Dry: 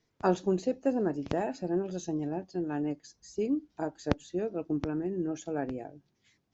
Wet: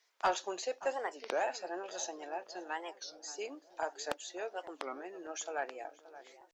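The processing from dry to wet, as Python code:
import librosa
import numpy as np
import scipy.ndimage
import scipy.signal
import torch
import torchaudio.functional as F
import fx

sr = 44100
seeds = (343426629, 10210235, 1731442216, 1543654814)

p1 = scipy.signal.sosfilt(scipy.signal.bessel(4, 940.0, 'highpass', norm='mag', fs=sr, output='sos'), x)
p2 = 10.0 ** (-27.5 / 20.0) * np.tanh(p1 / 10.0 ** (-27.5 / 20.0))
p3 = p2 + fx.echo_filtered(p2, sr, ms=576, feedback_pct=59, hz=1500.0, wet_db=-15.0, dry=0)
p4 = fx.record_warp(p3, sr, rpm=33.33, depth_cents=250.0)
y = p4 * librosa.db_to_amplitude(6.5)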